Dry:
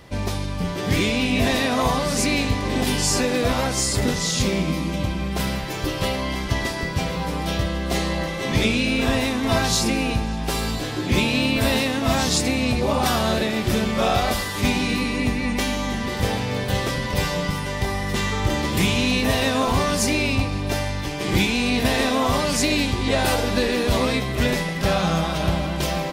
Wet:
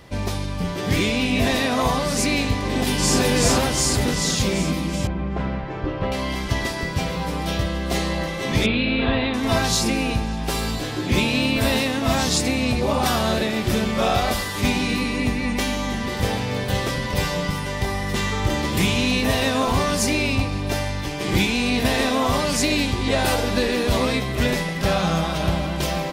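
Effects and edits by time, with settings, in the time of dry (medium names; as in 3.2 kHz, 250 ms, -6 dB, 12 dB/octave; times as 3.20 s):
2.60–3.20 s: echo throw 380 ms, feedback 65%, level -0.5 dB
5.07–6.12 s: low-pass 1.6 kHz
8.66–9.34 s: steep low-pass 4.2 kHz 72 dB/octave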